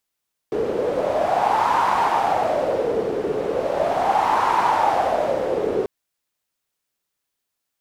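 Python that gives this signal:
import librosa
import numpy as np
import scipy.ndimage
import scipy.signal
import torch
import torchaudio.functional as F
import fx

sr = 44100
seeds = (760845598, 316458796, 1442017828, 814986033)

y = fx.wind(sr, seeds[0], length_s=5.34, low_hz=430.0, high_hz=940.0, q=5.7, gusts=2, swing_db=4.5)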